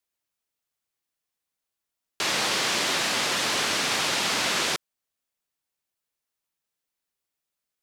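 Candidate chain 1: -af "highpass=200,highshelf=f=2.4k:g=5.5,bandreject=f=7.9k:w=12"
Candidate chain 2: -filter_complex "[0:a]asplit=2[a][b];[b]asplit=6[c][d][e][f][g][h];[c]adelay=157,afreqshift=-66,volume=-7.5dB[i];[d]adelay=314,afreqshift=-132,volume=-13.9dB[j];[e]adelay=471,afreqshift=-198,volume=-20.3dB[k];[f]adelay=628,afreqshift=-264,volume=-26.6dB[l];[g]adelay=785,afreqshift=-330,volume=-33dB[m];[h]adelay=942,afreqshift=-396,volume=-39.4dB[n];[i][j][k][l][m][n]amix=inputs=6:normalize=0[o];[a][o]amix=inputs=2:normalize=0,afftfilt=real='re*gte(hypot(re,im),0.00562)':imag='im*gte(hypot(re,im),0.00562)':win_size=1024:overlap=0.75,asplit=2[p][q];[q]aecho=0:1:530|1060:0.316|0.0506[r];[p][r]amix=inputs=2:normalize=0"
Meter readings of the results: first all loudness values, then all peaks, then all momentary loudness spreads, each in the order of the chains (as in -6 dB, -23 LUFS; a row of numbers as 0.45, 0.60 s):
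-20.5, -23.0 LUFS; -9.0, -11.0 dBFS; 3, 10 LU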